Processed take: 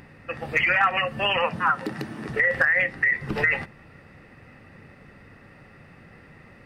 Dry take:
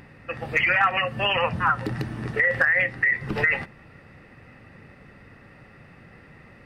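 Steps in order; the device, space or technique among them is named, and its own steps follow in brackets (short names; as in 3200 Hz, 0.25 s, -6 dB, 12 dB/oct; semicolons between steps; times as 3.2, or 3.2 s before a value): notches 60/120 Hz; 1.42–2.29 HPF 160 Hz 12 dB/oct; exciter from parts (in parallel at -13 dB: HPF 4000 Hz 12 dB/oct + soft clip -28 dBFS, distortion -17 dB)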